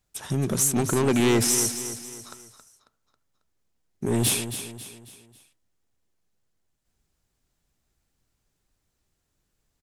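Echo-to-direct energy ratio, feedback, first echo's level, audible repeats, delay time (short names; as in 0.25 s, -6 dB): -9.5 dB, 42%, -10.5 dB, 4, 0.272 s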